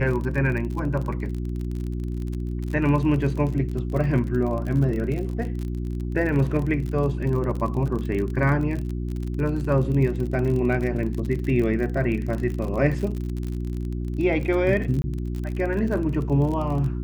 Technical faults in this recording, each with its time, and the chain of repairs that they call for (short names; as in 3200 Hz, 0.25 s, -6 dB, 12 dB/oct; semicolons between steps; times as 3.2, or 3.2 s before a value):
crackle 39/s -29 dBFS
hum 60 Hz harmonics 6 -28 dBFS
15.02–15.04 gap 20 ms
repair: de-click; de-hum 60 Hz, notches 6; interpolate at 15.02, 20 ms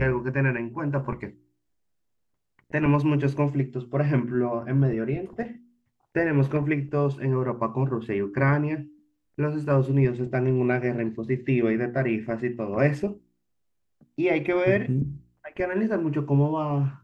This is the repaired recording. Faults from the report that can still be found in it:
none